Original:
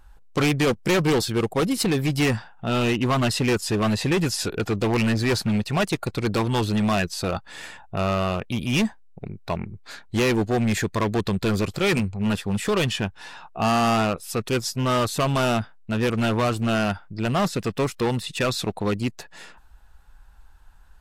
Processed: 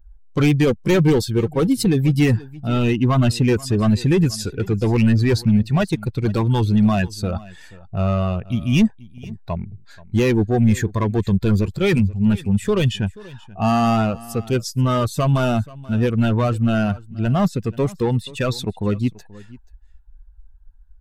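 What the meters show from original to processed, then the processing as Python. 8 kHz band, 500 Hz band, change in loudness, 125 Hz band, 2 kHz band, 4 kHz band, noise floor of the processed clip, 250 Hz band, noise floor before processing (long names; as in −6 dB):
−2.5 dB, +2.5 dB, +4.0 dB, +7.5 dB, −2.0 dB, −2.5 dB, −45 dBFS, +5.5 dB, −48 dBFS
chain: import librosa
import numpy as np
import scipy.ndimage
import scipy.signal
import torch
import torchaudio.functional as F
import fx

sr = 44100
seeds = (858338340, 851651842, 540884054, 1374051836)

y = fx.bin_expand(x, sr, power=1.5)
y = fx.low_shelf(y, sr, hz=380.0, db=9.5)
y = y + 10.0 ** (-20.5 / 20.0) * np.pad(y, (int(482 * sr / 1000.0), 0))[:len(y)]
y = y * 10.0 ** (1.5 / 20.0)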